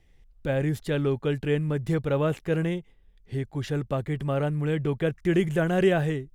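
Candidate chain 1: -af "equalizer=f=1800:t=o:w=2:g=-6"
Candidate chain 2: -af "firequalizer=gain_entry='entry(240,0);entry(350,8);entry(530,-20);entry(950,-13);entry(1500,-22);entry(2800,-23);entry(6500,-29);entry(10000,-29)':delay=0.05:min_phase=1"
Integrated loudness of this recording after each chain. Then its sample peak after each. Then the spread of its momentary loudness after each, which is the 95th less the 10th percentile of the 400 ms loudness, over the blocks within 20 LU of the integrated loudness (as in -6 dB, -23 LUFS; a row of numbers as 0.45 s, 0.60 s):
-27.5 LUFS, -26.0 LUFS; -11.5 dBFS, -8.0 dBFS; 8 LU, 11 LU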